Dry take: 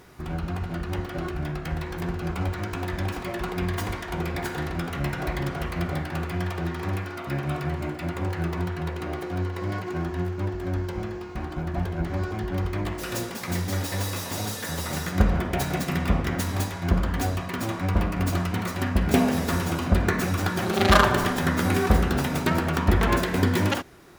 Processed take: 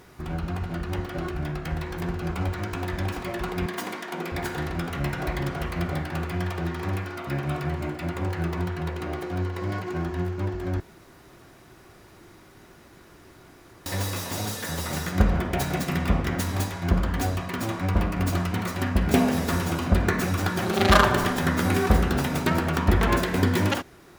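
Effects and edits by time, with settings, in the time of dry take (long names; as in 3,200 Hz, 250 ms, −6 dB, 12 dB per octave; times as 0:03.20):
0:03.66–0:04.32: Chebyshev high-pass filter 210 Hz, order 3
0:10.80–0:13.86: fill with room tone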